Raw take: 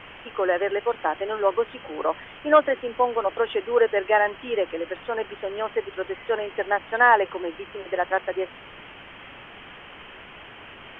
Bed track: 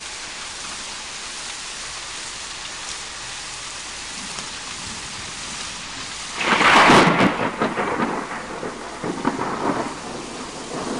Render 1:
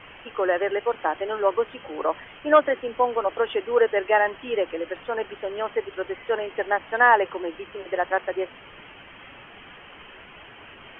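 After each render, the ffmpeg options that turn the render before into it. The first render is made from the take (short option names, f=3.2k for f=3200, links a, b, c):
-af "afftdn=nr=6:nf=-44"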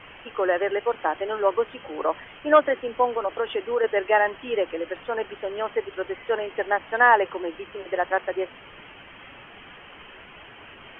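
-filter_complex "[0:a]asettb=1/sr,asplit=3[a][b][c];[a]atrim=end=3.064[d];[b]atrim=start=3.06:end=3.84,asetpts=PTS-STARTPTS,afade=t=in:d=0.004:c=qsin,afade=t=out:st=0.776:d=0.004:c=qsin,acompressor=threshold=-21dB:ratio=2.5:attack=3.2:release=140:knee=1:detection=peak[e];[c]atrim=start=3.836[f];[d][e]acrossfade=d=0.004:c1=hsin:c2=qsin[g];[g][f]acrossfade=d=0.004:c1=qsin:c2=hsin"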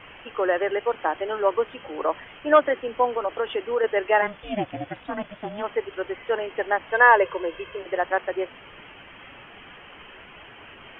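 -filter_complex "[0:a]asplit=3[a][b][c];[a]afade=t=out:st=4.21:d=0.02[d];[b]aeval=exprs='val(0)*sin(2*PI*210*n/s)':c=same,afade=t=in:st=4.21:d=0.02,afade=t=out:st=5.62:d=0.02[e];[c]afade=t=in:st=5.62:d=0.02[f];[d][e][f]amix=inputs=3:normalize=0,asettb=1/sr,asplit=3[g][h][i];[g]atrim=end=6.904[j];[h]atrim=start=6.9:end=7.79,asetpts=PTS-STARTPTS,afade=t=in:d=0.004:c=qsin,afade=t=out:st=0.886:d=0.004:c=qsin,aecho=1:1:1.9:0.74,atrim=end_sample=39249[k];[i]atrim=start=7.786[l];[j][k]acrossfade=d=0.004:c1=hsin:c2=qsin[m];[m][l]acrossfade=d=0.004:c1=qsin:c2=hsin"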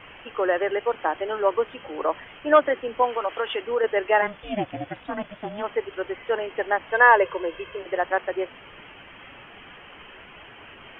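-filter_complex "[0:a]asettb=1/sr,asplit=3[a][b][c];[a]atrim=end=3.024[d];[b]atrim=start=3.02:end=3.61,asetpts=PTS-STARTPTS,afade=t=in:d=0.004:c=qsin,afade=t=out:st=0.586:d=0.004:c=qsin,tiltshelf=f=690:g=-5[e];[c]atrim=start=3.606[f];[d][e]acrossfade=d=0.004:c1=hsin:c2=qsin[g];[g][f]acrossfade=d=0.004:c1=qsin:c2=hsin"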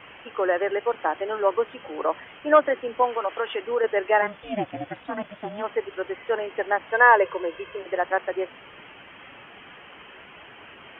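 -filter_complex "[0:a]acrossover=split=3200[a][b];[b]acompressor=threshold=-56dB:ratio=4:attack=1:release=60[c];[a][c]amix=inputs=2:normalize=0,highpass=f=120:p=1"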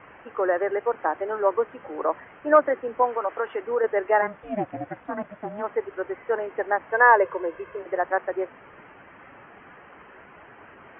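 -af "lowpass=f=1.9k:w=0.5412,lowpass=f=1.9k:w=1.3066"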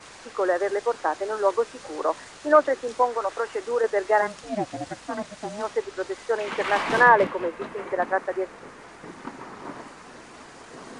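-filter_complex "[1:a]volume=-16dB[a];[0:a][a]amix=inputs=2:normalize=0"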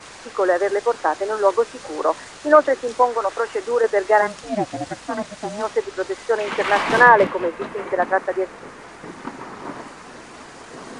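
-af "volume=5dB,alimiter=limit=-1dB:level=0:latency=1"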